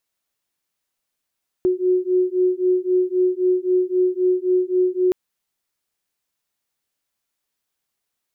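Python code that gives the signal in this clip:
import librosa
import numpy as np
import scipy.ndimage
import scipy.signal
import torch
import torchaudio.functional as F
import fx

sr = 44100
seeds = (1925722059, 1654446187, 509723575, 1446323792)

y = fx.two_tone_beats(sr, length_s=3.47, hz=364.0, beat_hz=3.8, level_db=-19.0)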